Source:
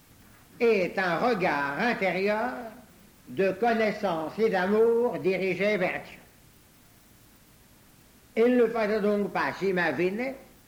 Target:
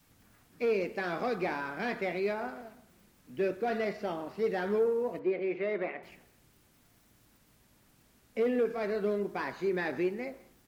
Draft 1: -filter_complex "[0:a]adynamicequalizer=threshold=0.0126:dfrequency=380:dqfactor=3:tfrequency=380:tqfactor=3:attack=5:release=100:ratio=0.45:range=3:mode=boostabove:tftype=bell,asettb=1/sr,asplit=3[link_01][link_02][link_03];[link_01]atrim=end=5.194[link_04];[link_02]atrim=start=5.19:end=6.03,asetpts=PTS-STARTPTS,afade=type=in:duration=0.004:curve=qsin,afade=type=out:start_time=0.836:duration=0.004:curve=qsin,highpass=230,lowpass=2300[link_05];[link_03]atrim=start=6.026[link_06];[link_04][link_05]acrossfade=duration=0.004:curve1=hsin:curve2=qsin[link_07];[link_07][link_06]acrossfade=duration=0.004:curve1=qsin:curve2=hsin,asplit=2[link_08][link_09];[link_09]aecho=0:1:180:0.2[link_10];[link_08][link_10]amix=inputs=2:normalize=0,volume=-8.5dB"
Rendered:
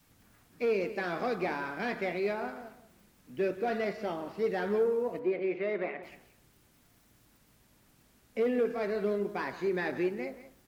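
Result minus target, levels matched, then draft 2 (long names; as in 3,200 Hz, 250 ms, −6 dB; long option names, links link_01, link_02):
echo-to-direct +12 dB
-filter_complex "[0:a]adynamicequalizer=threshold=0.0126:dfrequency=380:dqfactor=3:tfrequency=380:tqfactor=3:attack=5:release=100:ratio=0.45:range=3:mode=boostabove:tftype=bell,asettb=1/sr,asplit=3[link_01][link_02][link_03];[link_01]atrim=end=5.194[link_04];[link_02]atrim=start=5.19:end=6.03,asetpts=PTS-STARTPTS,afade=type=in:duration=0.004:curve=qsin,afade=type=out:start_time=0.836:duration=0.004:curve=qsin,highpass=230,lowpass=2300[link_05];[link_03]atrim=start=6.026[link_06];[link_04][link_05]acrossfade=duration=0.004:curve1=hsin:curve2=qsin[link_07];[link_07][link_06]acrossfade=duration=0.004:curve1=qsin:curve2=hsin,asplit=2[link_08][link_09];[link_09]aecho=0:1:180:0.0501[link_10];[link_08][link_10]amix=inputs=2:normalize=0,volume=-8.5dB"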